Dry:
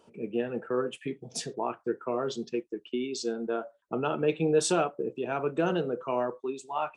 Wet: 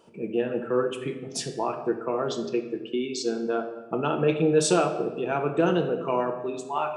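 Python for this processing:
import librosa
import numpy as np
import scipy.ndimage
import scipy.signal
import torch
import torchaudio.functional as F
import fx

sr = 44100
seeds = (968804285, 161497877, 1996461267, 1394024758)

y = fx.room_shoebox(x, sr, seeds[0], volume_m3=720.0, walls='mixed', distance_m=0.74)
y = y * librosa.db_to_amplitude(3.0)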